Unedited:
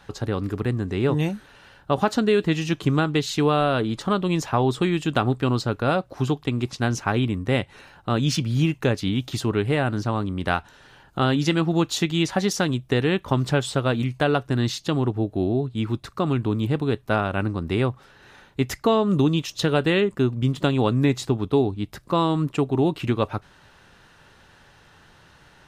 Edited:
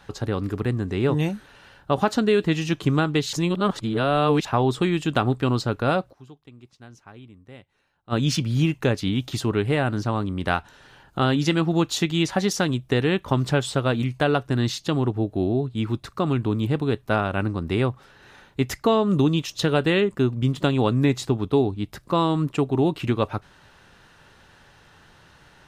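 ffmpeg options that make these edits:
-filter_complex "[0:a]asplit=5[a][b][c][d][e];[a]atrim=end=3.332[f];[b]atrim=start=3.328:end=4.452,asetpts=PTS-STARTPTS,areverse[g];[c]atrim=start=4.448:end=6.26,asetpts=PTS-STARTPTS,afade=t=out:st=1.652:d=0.16:c=exp:silence=0.0749894[h];[d]atrim=start=6.26:end=7.97,asetpts=PTS-STARTPTS,volume=-22.5dB[i];[e]atrim=start=7.97,asetpts=PTS-STARTPTS,afade=t=in:d=0.16:c=exp:silence=0.0749894[j];[f][g]acrossfade=d=0.004:c1=hsin:c2=hsin[k];[h][i][j]concat=n=3:v=0:a=1[l];[k][l]acrossfade=d=0.004:c1=hsin:c2=hsin"

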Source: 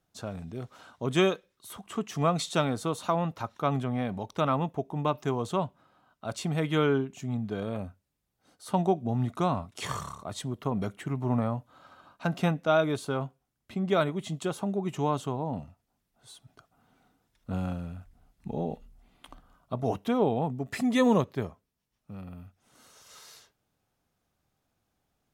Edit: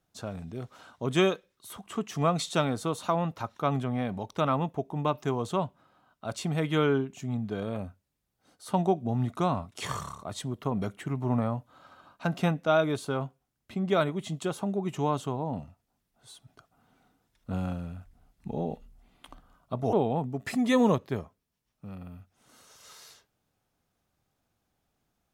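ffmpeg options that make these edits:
-filter_complex "[0:a]asplit=2[a][b];[a]atrim=end=19.932[c];[b]atrim=start=20.188[d];[c][d]acrossfade=d=0.004:c1=hsin:c2=hsin"

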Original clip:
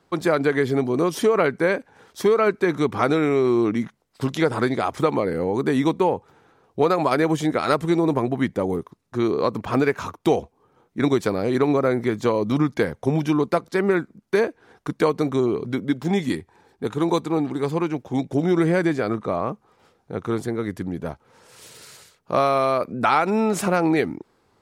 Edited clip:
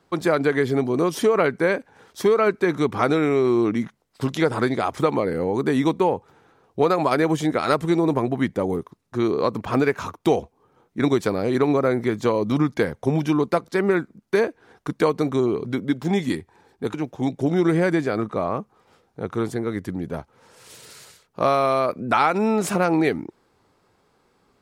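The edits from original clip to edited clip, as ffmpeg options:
-filter_complex "[0:a]asplit=2[a][b];[a]atrim=end=16.942[c];[b]atrim=start=17.858[d];[c][d]acrossfade=d=0.004:c1=hsin:c2=hsin"

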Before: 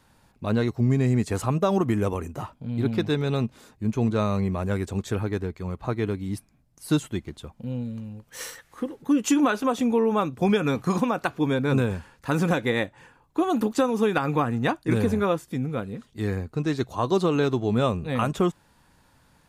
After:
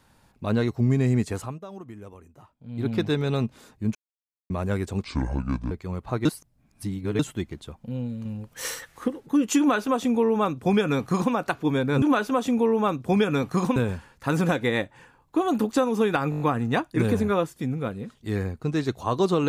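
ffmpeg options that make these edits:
-filter_complex "[0:a]asplit=18[a][b][c][d][e][f][g][h][i][j][k][l][m][n][o][p][q][r];[a]atrim=end=1.59,asetpts=PTS-STARTPTS,afade=t=out:st=1.2:d=0.39:silence=0.125893[s];[b]atrim=start=1.59:end=2.57,asetpts=PTS-STARTPTS,volume=-18dB[t];[c]atrim=start=2.57:end=3.95,asetpts=PTS-STARTPTS,afade=t=in:d=0.39:silence=0.125893,afade=t=out:st=1.376:d=0.004:c=hsin[u];[d]atrim=start=3.95:end=4.5,asetpts=PTS-STARTPTS,volume=0[v];[e]atrim=start=4.5:end=5.044,asetpts=PTS-STARTPTS,afade=t=in:d=0.004:c=hsin[w];[f]atrim=start=5.04:end=5.47,asetpts=PTS-STARTPTS,asetrate=28224,aresample=44100[x];[g]atrim=start=5.466:end=6.012[y];[h]atrim=start=6.008:end=6.952,asetpts=PTS-STARTPTS,areverse[z];[i]atrim=start=6.948:end=8.012[aa];[j]atrim=start=8.008:end=8.842,asetpts=PTS-STARTPTS,volume=4.5dB[ab];[k]atrim=start=8.838:end=11.782[ac];[l]atrim=start=9.348:end=11.092[ad];[m]atrim=start=11.778:end=14.342[ae];[n]atrim=start=14.318:end=14.342[af];[o]atrim=start=14.318:end=14.342[ag];[p]atrim=start=14.318:end=14.342[ah];[q]atrim=start=14.318:end=14.342[ai];[r]atrim=start=14.318[aj];[s][t][u][v][w]concat=n=5:v=0:a=1[ak];[ak][x]acrossfade=d=0.004:c1=hsin:c2=hsin[al];[al][y]acrossfade=d=0.004:c1=hsin:c2=hsin[am];[am][z]acrossfade=d=0.004:c1=hsin:c2=hsin[an];[an][aa]acrossfade=d=0.004:c1=hsin:c2=hsin[ao];[ao][ab]acrossfade=d=0.004:c1=hsin:c2=hsin[ap];[ap][ac]acrossfade=d=0.004:c1=hsin:c2=hsin[aq];[aq][ad]acrossfade=d=0.004:c1=hsin:c2=hsin[ar];[ar][ae]acrossfade=d=0.004:c1=hsin:c2=hsin[as];[as][af]acrossfade=d=0.004:c1=hsin:c2=hsin[at];[at][ag]acrossfade=d=0.004:c1=hsin:c2=hsin[au];[au][ah]acrossfade=d=0.004:c1=hsin:c2=hsin[av];[av][ai]acrossfade=d=0.004:c1=hsin:c2=hsin[aw];[aw][aj]acrossfade=d=0.004:c1=hsin:c2=hsin"

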